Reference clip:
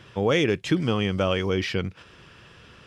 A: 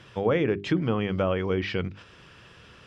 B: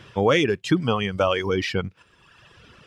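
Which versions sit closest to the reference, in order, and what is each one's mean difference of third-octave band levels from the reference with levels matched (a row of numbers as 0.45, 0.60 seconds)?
A, B; 3.0, 4.0 decibels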